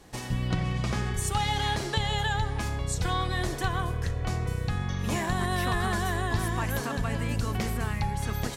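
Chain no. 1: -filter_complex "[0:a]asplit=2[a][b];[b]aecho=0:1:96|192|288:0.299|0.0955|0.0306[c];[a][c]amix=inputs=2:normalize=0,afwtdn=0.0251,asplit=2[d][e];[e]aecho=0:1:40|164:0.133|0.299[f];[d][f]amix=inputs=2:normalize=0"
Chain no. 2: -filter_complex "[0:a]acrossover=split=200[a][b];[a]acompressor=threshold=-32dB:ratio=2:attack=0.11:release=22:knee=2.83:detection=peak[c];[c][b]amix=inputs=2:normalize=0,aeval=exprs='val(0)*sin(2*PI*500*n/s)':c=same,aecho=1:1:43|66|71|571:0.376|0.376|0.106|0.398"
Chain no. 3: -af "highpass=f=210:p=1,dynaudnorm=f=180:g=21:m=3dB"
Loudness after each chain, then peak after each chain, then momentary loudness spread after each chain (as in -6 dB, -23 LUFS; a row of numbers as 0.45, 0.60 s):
-29.5, -31.5, -29.5 LUFS; -14.0, -15.5, -14.5 dBFS; 3, 4, 7 LU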